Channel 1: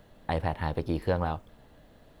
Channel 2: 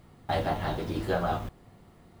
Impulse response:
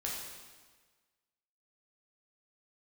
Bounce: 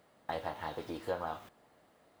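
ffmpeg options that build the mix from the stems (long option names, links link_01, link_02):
-filter_complex "[0:a]lowpass=1200,volume=-1.5dB[link_01];[1:a]acompressor=threshold=-29dB:ratio=6,volume=-5.5dB[link_02];[link_01][link_02]amix=inputs=2:normalize=0,highpass=frequency=950:poles=1"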